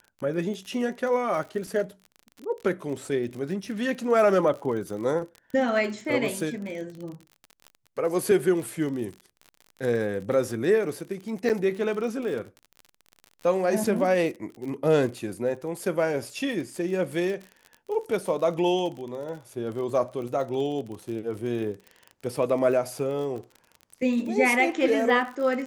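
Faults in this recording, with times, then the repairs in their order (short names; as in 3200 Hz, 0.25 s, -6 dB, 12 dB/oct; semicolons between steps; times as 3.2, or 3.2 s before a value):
crackle 42/s -34 dBFS
11.49–11.5 gap 8.3 ms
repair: de-click; interpolate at 11.49, 8.3 ms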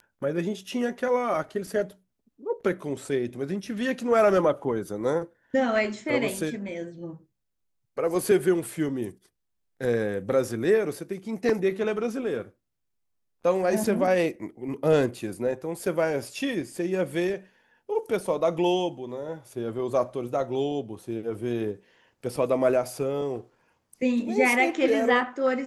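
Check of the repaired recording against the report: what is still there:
none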